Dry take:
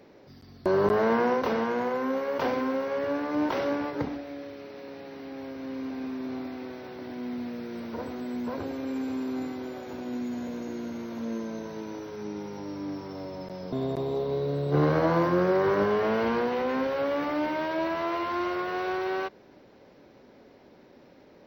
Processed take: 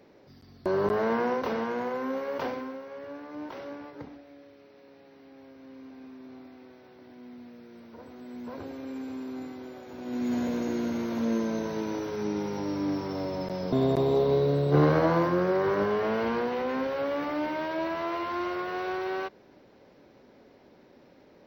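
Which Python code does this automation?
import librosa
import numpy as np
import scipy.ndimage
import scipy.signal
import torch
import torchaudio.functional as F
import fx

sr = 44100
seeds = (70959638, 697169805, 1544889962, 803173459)

y = fx.gain(x, sr, db=fx.line((2.38, -3.0), (2.81, -12.0), (7.98, -12.0), (8.6, -5.5), (9.92, -5.5), (10.33, 5.5), (14.3, 5.5), (15.4, -2.0)))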